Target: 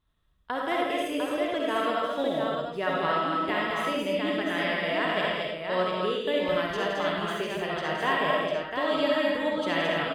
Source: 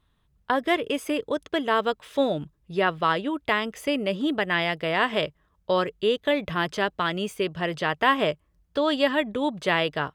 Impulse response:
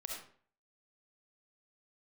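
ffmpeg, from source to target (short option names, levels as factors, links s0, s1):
-filter_complex "[0:a]aecho=1:1:168|218|700:0.422|0.668|0.562[s0];[1:a]atrim=start_sample=2205[s1];[s0][s1]afir=irnorm=-1:irlink=0,volume=0.631"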